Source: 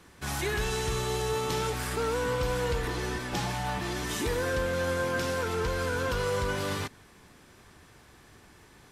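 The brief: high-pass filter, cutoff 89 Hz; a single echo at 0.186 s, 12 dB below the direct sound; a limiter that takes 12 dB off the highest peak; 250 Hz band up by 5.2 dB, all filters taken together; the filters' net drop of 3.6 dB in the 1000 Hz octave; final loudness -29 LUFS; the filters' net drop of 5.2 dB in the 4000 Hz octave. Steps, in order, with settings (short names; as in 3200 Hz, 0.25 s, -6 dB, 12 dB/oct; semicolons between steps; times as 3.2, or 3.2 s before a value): HPF 89 Hz; bell 250 Hz +7.5 dB; bell 1000 Hz -4.5 dB; bell 4000 Hz -6.5 dB; limiter -30 dBFS; echo 0.186 s -12 dB; gain +9 dB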